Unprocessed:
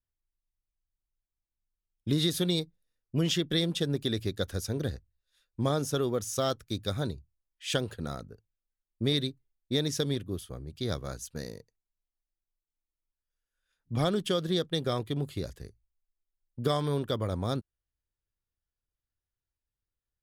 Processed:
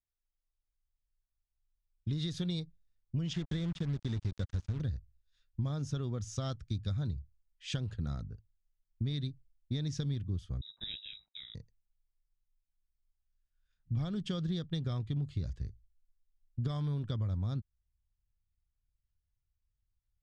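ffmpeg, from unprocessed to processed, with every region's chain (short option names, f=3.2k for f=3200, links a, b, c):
-filter_complex "[0:a]asettb=1/sr,asplit=3[a][b][c];[a]atrim=end=3.334[d];[b]atrim=start=3.33:end=4.81,asetpts=PTS-STARTPTS,afade=t=in:d=0.004:c=qsin,afade=t=out:st=1.476:d=0.004:c=qsin,acrossover=split=2700[e][f];[f]acompressor=threshold=-43dB:ratio=4:attack=1:release=60[g];[e][g]amix=inputs=2:normalize=0,acrusher=bits=5:mix=0:aa=0.5[h];[c]atrim=start=4.806[i];[d][h]acrossfade=d=0.004:c1=hsin:c2=qsin[j];[j][i]acrossfade=d=0.004:c1=qsin:c2=hsin,asettb=1/sr,asplit=3[k][l][m];[k]atrim=end=10.614[n];[l]atrim=start=10.61:end=11.55,asetpts=PTS-STARTPTS,afade=t=in:d=0.004:c=qsin,afade=t=out:st=0.936:d=0.004:c=qsin,lowpass=f=3.3k:t=q:w=0.5098,lowpass=f=3.3k:t=q:w=0.6013,lowpass=f=3.3k:t=q:w=0.9,lowpass=f=3.3k:t=q:w=2.563,afreqshift=-3900,agate=range=-33dB:threshold=-51dB:ratio=3:release=100:detection=peak,aeval=exprs='val(0)*sin(2*PI*52*n/s)':c=same[o];[m]atrim=start=11.546[p];[n][o]acrossfade=d=0.004:c1=hsin:c2=qsin[q];[q][p]acrossfade=d=0.004:c1=qsin:c2=hsin,lowpass=f=6.9k:w=0.5412,lowpass=f=6.9k:w=1.3066,asubboost=boost=8:cutoff=150,acompressor=threshold=-24dB:ratio=6,volume=-7dB"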